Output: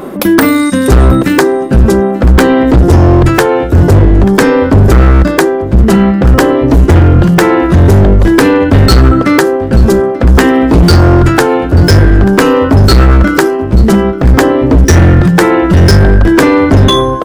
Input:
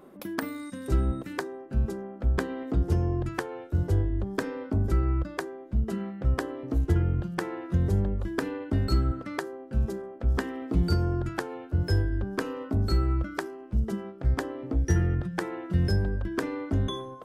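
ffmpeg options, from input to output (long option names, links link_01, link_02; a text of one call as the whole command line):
ffmpeg -i in.wav -af "volume=26dB,asoftclip=hard,volume=-26dB,aecho=1:1:886:0.1,apsyclip=30.5dB,volume=-1.5dB" out.wav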